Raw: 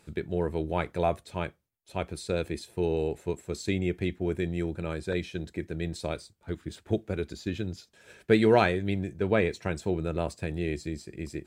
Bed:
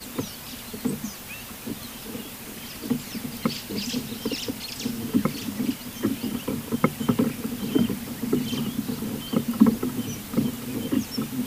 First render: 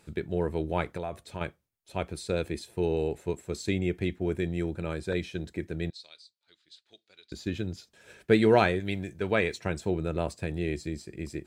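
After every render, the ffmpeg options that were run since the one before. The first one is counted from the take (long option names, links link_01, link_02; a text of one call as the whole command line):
ffmpeg -i in.wav -filter_complex "[0:a]asettb=1/sr,asplit=3[link_01][link_02][link_03];[link_01]atrim=end=0.974[link_04];[link_02]atrim=start=0.97:end=1.41,asetpts=PTS-STARTPTS,afade=type=in:duration=0.004:curve=qsin,afade=type=out:start_time=0.436:duration=0.004:curve=qsin,acompressor=threshold=-32dB:ratio=3:attack=3.2:release=140:knee=1:detection=peak[link_05];[link_03]atrim=start=1.406[link_06];[link_04][link_05]acrossfade=duration=0.004:curve1=hsin:curve2=qsin[link_07];[link_07][link_06]acrossfade=duration=0.004:curve1=qsin:curve2=hsin,asettb=1/sr,asplit=3[link_08][link_09][link_10];[link_08]atrim=end=5.904[link_11];[link_09]atrim=start=5.9:end=7.32,asetpts=PTS-STARTPTS,afade=type=in:duration=0.004:curve=qsin,afade=type=out:start_time=1.416:duration=0.004:curve=qsin,bandpass=frequency=4200:width_type=q:width=3.8[link_12];[link_10]atrim=start=7.316[link_13];[link_11][link_12]acrossfade=duration=0.004:curve1=hsin:curve2=qsin[link_14];[link_14][link_13]acrossfade=duration=0.004:curve1=qsin:curve2=hsin,asettb=1/sr,asplit=3[link_15][link_16][link_17];[link_15]atrim=end=8.804[link_18];[link_16]atrim=start=8.8:end=9.59,asetpts=PTS-STARTPTS,afade=type=in:duration=0.004:curve=qsin,afade=type=out:start_time=0.786:duration=0.004:curve=qsin,tiltshelf=frequency=890:gain=-4[link_19];[link_17]atrim=start=9.586[link_20];[link_18][link_19]acrossfade=duration=0.004:curve1=hsin:curve2=qsin[link_21];[link_21][link_20]acrossfade=duration=0.004:curve1=qsin:curve2=hsin" out.wav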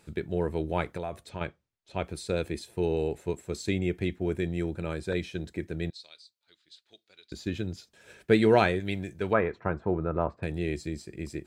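ffmpeg -i in.wav -filter_complex "[0:a]asettb=1/sr,asplit=3[link_01][link_02][link_03];[link_01]atrim=end=1.294[link_04];[link_02]atrim=start=1.29:end=2.04,asetpts=PTS-STARTPTS,afade=type=in:duration=0.004:curve=qsin,afade=type=out:start_time=0.746:duration=0.004:curve=qsin,lowpass=5700[link_05];[link_03]atrim=start=2.036[link_06];[link_04][link_05]acrossfade=duration=0.004:curve1=hsin:curve2=qsin[link_07];[link_07][link_06]acrossfade=duration=0.004:curve1=qsin:curve2=hsin,asettb=1/sr,asplit=3[link_08][link_09][link_10];[link_08]atrim=end=9.334[link_11];[link_09]atrim=start=9.33:end=10.43,asetpts=PTS-STARTPTS,afade=type=in:duration=0.004:curve=qsin,afade=type=out:start_time=1.096:duration=0.004:curve=qsin,lowpass=frequency=1200:width_type=q:width=2.4[link_12];[link_10]atrim=start=10.426[link_13];[link_11][link_12]acrossfade=duration=0.004:curve1=hsin:curve2=qsin[link_14];[link_14][link_13]acrossfade=duration=0.004:curve1=qsin:curve2=hsin" out.wav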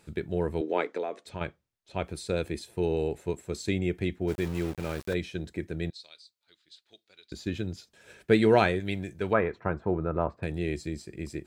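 ffmpeg -i in.wav -filter_complex "[0:a]asettb=1/sr,asplit=3[link_01][link_02][link_03];[link_01]atrim=end=0.614[link_04];[link_02]atrim=start=0.61:end=1.26,asetpts=PTS-STARTPTS,afade=type=in:duration=0.004:curve=qsin,afade=type=out:start_time=0.646:duration=0.004:curve=qsin,highpass=frequency=250:width=0.5412,highpass=frequency=250:width=1.3066,equalizer=frequency=270:width_type=q:width=4:gain=5,equalizer=frequency=450:width_type=q:width=4:gain=8,equalizer=frequency=2000:width_type=q:width=4:gain=3,lowpass=frequency=7100:width=0.5412,lowpass=frequency=7100:width=1.3066[link_05];[link_03]atrim=start=1.256[link_06];[link_04][link_05]acrossfade=duration=0.004:curve1=hsin:curve2=qsin[link_07];[link_07][link_06]acrossfade=duration=0.004:curve1=qsin:curve2=hsin,asplit=3[link_08][link_09][link_10];[link_08]afade=type=out:start_time=4.27:duration=0.02[link_11];[link_09]aeval=exprs='val(0)*gte(abs(val(0)),0.0133)':channel_layout=same,afade=type=in:start_time=4.27:duration=0.02,afade=type=out:start_time=5.13:duration=0.02[link_12];[link_10]afade=type=in:start_time=5.13:duration=0.02[link_13];[link_11][link_12][link_13]amix=inputs=3:normalize=0" out.wav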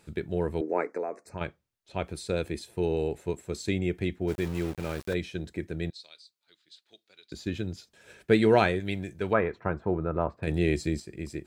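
ffmpeg -i in.wav -filter_complex "[0:a]asettb=1/sr,asplit=3[link_01][link_02][link_03];[link_01]atrim=end=0.614[link_04];[link_02]atrim=start=0.61:end=1.38,asetpts=PTS-STARTPTS,afade=type=in:duration=0.004:curve=qsin,afade=type=out:start_time=0.766:duration=0.004:curve=qsin,asuperstop=centerf=3300:order=4:qfactor=1.1[link_05];[link_03]atrim=start=1.376[link_06];[link_04][link_05]acrossfade=duration=0.004:curve1=hsin:curve2=qsin[link_07];[link_07][link_06]acrossfade=duration=0.004:curve1=qsin:curve2=hsin,asettb=1/sr,asplit=3[link_08][link_09][link_10];[link_08]atrim=end=5.954[link_11];[link_09]atrim=start=5.95:end=7.34,asetpts=PTS-STARTPTS,afade=type=in:duration=0.004:curve=qsin,afade=type=out:start_time=1.386:duration=0.004:curve=qsin,highpass=110[link_12];[link_10]atrim=start=7.336[link_13];[link_11][link_12]acrossfade=duration=0.004:curve1=hsin:curve2=qsin[link_14];[link_14][link_13]acrossfade=duration=0.004:curve1=qsin:curve2=hsin,asplit=3[link_15][link_16][link_17];[link_15]atrim=end=10.472[link_18];[link_16]atrim=start=10.468:end=11.002,asetpts=PTS-STARTPTS,volume=5.5dB[link_19];[link_17]atrim=start=10.998[link_20];[link_18][link_19]acrossfade=duration=0.004:curve1=hsin:curve2=hsin[link_21];[link_21][link_20]acrossfade=duration=0.004:curve1=hsin:curve2=hsin" out.wav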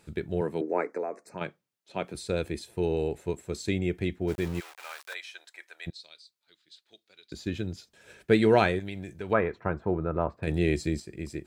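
ffmpeg -i in.wav -filter_complex "[0:a]asettb=1/sr,asplit=3[link_01][link_02][link_03];[link_01]atrim=end=0.414[link_04];[link_02]atrim=start=0.41:end=2.15,asetpts=PTS-STARTPTS,afade=type=in:duration=0.004:curve=qsin,afade=type=out:start_time=1.736:duration=0.004:curve=qsin,highpass=frequency=140:width=0.5412,highpass=frequency=140:width=1.3066[link_05];[link_03]atrim=start=2.146[link_06];[link_04][link_05]acrossfade=duration=0.004:curve1=hsin:curve2=qsin[link_07];[link_07][link_06]acrossfade=duration=0.004:curve1=qsin:curve2=hsin,asplit=3[link_08][link_09][link_10];[link_08]afade=type=out:start_time=4.59:duration=0.02[link_11];[link_09]highpass=frequency=840:width=0.5412,highpass=frequency=840:width=1.3066,afade=type=in:start_time=4.59:duration=0.02,afade=type=out:start_time=5.86:duration=0.02[link_12];[link_10]afade=type=in:start_time=5.86:duration=0.02[link_13];[link_11][link_12][link_13]amix=inputs=3:normalize=0,asettb=1/sr,asplit=3[link_14][link_15][link_16];[link_14]atrim=end=8.794[link_17];[link_15]atrim=start=8.79:end=9.3,asetpts=PTS-STARTPTS,afade=type=in:duration=0.004:curve=qsin,afade=type=out:start_time=0.506:duration=0.004:curve=qsin,acompressor=threshold=-33dB:ratio=3:attack=3.2:release=140:knee=1:detection=peak[link_18];[link_16]atrim=start=9.296[link_19];[link_17][link_18]acrossfade=duration=0.004:curve1=hsin:curve2=qsin[link_20];[link_20][link_19]acrossfade=duration=0.004:curve1=qsin:curve2=hsin" out.wav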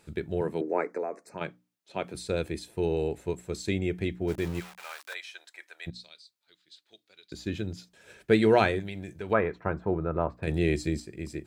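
ffmpeg -i in.wav -af "bandreject=frequency=60:width_type=h:width=6,bandreject=frequency=120:width_type=h:width=6,bandreject=frequency=180:width_type=h:width=6,bandreject=frequency=240:width_type=h:width=6,bandreject=frequency=300:width_type=h:width=6" out.wav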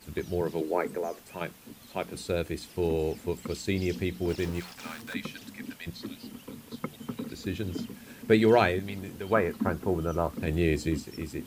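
ffmpeg -i in.wav -i bed.wav -filter_complex "[1:a]volume=-14.5dB[link_01];[0:a][link_01]amix=inputs=2:normalize=0" out.wav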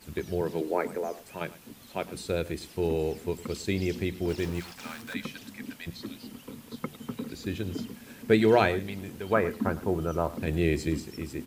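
ffmpeg -i in.wav -af "aecho=1:1:106:0.126" out.wav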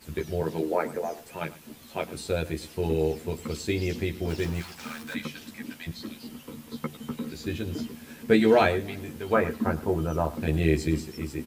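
ffmpeg -i in.wav -filter_complex "[0:a]asplit=2[link_01][link_02];[link_02]adelay=13,volume=-3dB[link_03];[link_01][link_03]amix=inputs=2:normalize=0,asplit=2[link_04][link_05];[link_05]adelay=291.5,volume=-29dB,highshelf=frequency=4000:gain=-6.56[link_06];[link_04][link_06]amix=inputs=2:normalize=0" out.wav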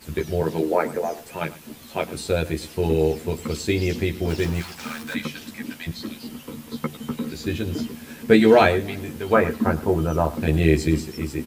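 ffmpeg -i in.wav -af "volume=5.5dB" out.wav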